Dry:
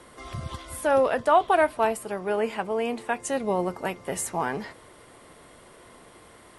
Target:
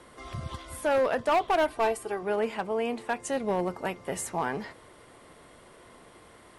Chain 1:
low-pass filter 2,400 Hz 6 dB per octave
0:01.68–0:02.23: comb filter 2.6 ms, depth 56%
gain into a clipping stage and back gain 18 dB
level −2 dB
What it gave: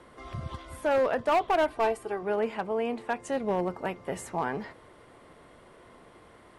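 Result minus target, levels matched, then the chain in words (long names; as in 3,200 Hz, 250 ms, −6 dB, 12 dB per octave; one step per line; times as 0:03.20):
8,000 Hz band −7.5 dB
low-pass filter 8,500 Hz 6 dB per octave
0:01.68–0:02.23: comb filter 2.6 ms, depth 56%
gain into a clipping stage and back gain 18 dB
level −2 dB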